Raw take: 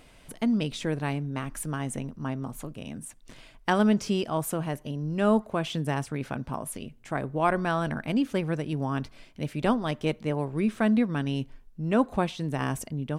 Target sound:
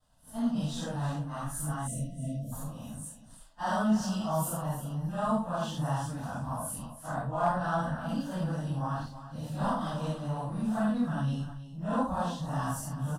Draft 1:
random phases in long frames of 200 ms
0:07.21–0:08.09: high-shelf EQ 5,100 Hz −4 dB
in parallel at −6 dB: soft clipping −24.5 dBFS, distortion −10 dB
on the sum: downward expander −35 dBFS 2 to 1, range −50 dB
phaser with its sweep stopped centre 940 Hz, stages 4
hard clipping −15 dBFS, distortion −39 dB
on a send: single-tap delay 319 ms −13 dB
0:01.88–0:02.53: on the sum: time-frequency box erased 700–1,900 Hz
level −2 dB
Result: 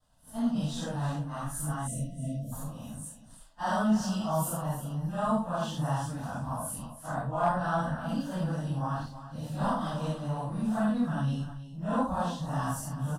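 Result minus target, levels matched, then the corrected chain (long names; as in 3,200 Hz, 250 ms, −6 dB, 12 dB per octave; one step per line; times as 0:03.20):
soft clipping: distortion −4 dB
random phases in long frames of 200 ms
0:07.21–0:08.09: high-shelf EQ 5,100 Hz −4 dB
in parallel at −6 dB: soft clipping −31 dBFS, distortion −6 dB
on the sum: downward expander −35 dBFS 2 to 1, range −50 dB
phaser with its sweep stopped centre 940 Hz, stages 4
hard clipping −15 dBFS, distortion −42 dB
on a send: single-tap delay 319 ms −13 dB
0:01.88–0:02.53: on the sum: time-frequency box erased 700–1,900 Hz
level −2 dB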